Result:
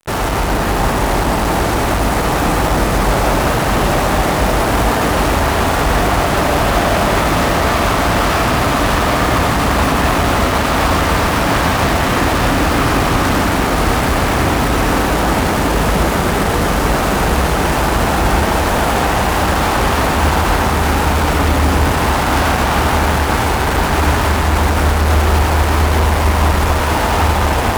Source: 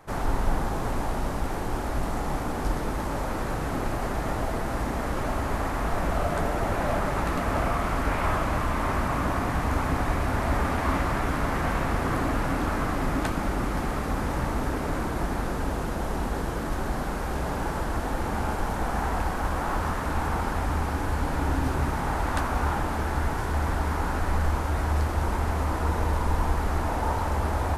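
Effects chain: HPF 44 Hz 24 dB/oct; fuzz box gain 43 dB, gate -44 dBFS; echo with dull and thin repeats by turns 0.746 s, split 1200 Hz, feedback 77%, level -5 dB; reverb RT60 1.9 s, pre-delay 75 ms, DRR 2 dB; gain -3 dB

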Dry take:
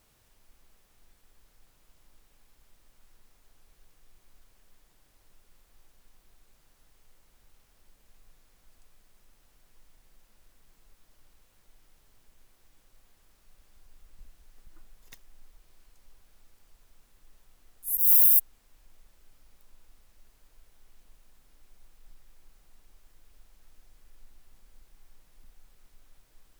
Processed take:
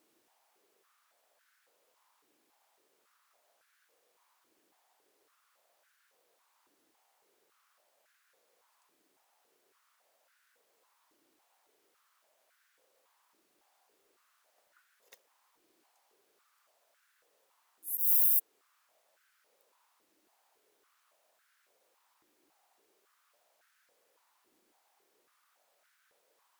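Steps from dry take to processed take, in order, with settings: stepped high-pass 3.6 Hz 320–1500 Hz; gain -7 dB

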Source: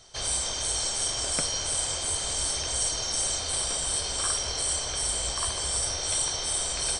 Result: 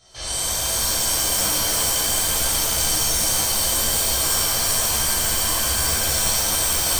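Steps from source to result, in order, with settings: chorus 1.2 Hz, delay 15.5 ms, depth 6.8 ms; shimmer reverb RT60 3.2 s, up +7 st, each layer -2 dB, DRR -8.5 dB

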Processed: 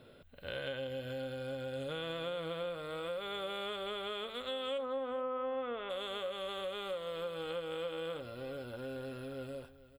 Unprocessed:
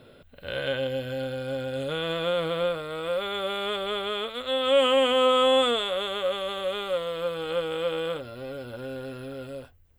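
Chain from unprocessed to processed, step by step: 4.77–5.89 LPF 1300 Hz -> 2500 Hz 24 dB/oct; compressor 4:1, threshold -31 dBFS, peak gain reduction 12 dB; echo 0.434 s -16.5 dB; gain -6 dB

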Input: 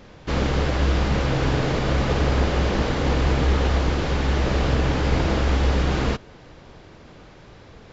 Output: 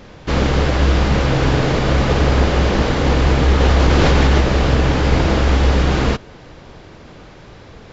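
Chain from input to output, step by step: 3.6–4.41 fast leveller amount 100%; gain +6 dB

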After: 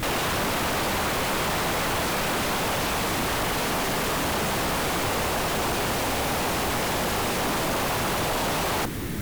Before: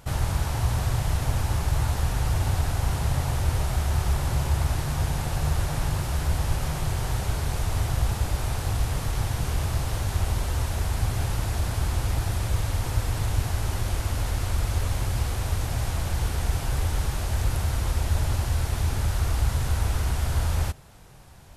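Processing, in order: tone controls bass +3 dB, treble +6 dB; limiter -20 dBFS, peak gain reduction 11 dB; speed mistake 33 rpm record played at 78 rpm; sine folder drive 16 dB, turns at -18.5 dBFS; vibrato 2.8 Hz 32 cents; slew limiter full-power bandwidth 340 Hz; gain -3 dB

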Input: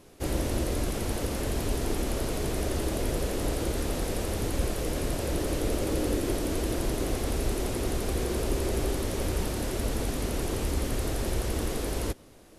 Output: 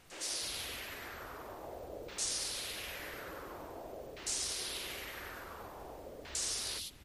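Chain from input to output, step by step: HPF 48 Hz 12 dB/oct; pre-emphasis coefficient 0.97; in parallel at -2.5 dB: limiter -32 dBFS, peak gain reduction 9 dB; on the sum: plain phase-vocoder stretch 0.56×; LFO low-pass saw down 0.48 Hz 490–6900 Hz; careless resampling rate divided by 3×, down none, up hold; three bands offset in time mids, highs, lows 0.1/0.3 s, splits 260/3000 Hz; added noise pink -67 dBFS; gain +5 dB; MP3 56 kbps 44100 Hz

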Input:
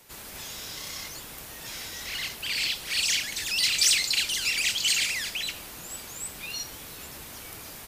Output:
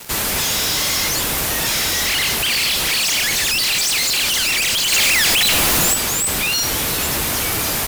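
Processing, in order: fuzz box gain 47 dB, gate -53 dBFS; 4.92–5.94 sample leveller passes 5; gain -4 dB

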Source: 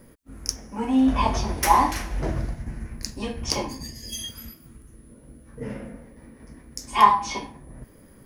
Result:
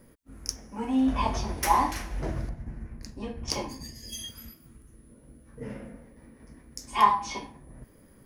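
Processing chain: 2.49–3.48 high shelf 2300 Hz -11 dB; gain -5 dB

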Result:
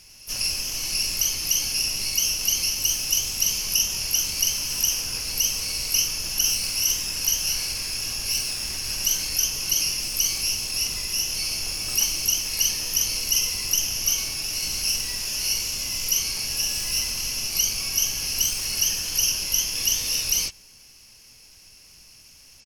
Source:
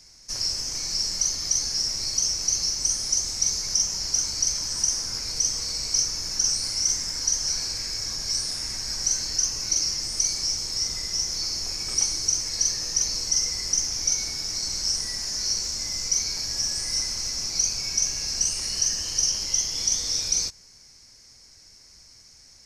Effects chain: reverse echo 0.195 s -23.5 dB; harmoniser -12 st -9 dB, +12 st -6 dB

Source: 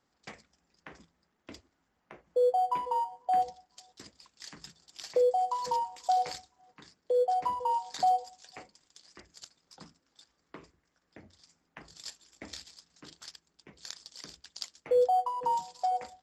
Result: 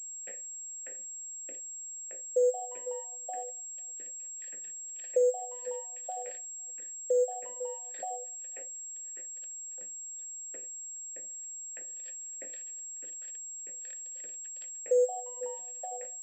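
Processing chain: in parallel at +2 dB: compressor, threshold -33 dBFS, peak gain reduction 11.5 dB; on the sum: bit-crush 11-bit; vowel filter e; pulse-width modulation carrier 7600 Hz

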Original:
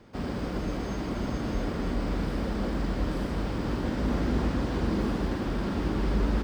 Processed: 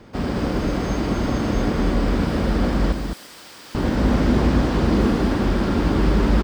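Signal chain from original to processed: 2.92–3.75 differentiator; echo 0.209 s -6 dB; gain +8.5 dB

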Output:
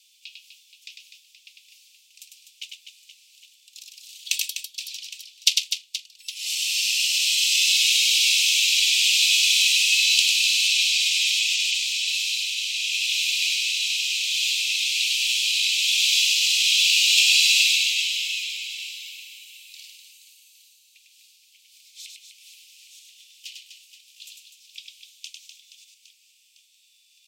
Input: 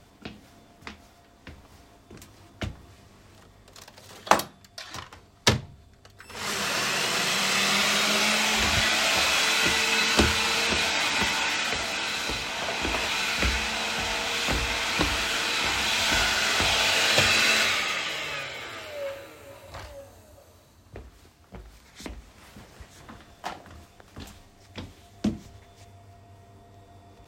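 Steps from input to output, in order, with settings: steep high-pass 2500 Hz 72 dB/oct; on a send: reverse bouncing-ball echo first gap 0.1 s, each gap 1.5×, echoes 5; on the sum: gain +5 dB

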